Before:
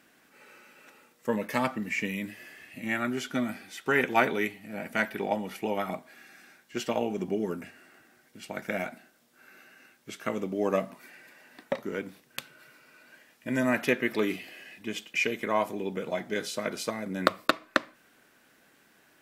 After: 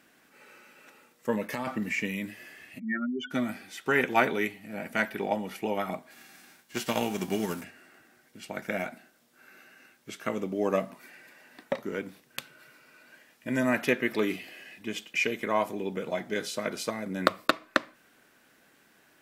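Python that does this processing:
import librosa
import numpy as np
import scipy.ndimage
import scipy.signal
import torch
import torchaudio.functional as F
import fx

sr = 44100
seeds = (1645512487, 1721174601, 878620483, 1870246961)

y = fx.over_compress(x, sr, threshold_db=-31.0, ratio=-1.0, at=(1.52, 1.95))
y = fx.spec_expand(y, sr, power=3.9, at=(2.78, 3.3), fade=0.02)
y = fx.envelope_flatten(y, sr, power=0.6, at=(6.1, 7.63), fade=0.02)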